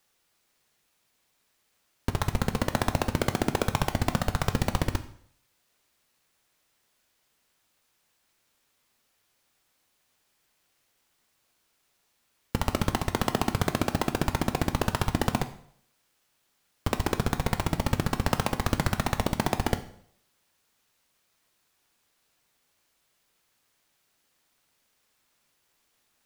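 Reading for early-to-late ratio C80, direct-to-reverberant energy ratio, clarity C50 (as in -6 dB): 16.5 dB, 9.5 dB, 14.0 dB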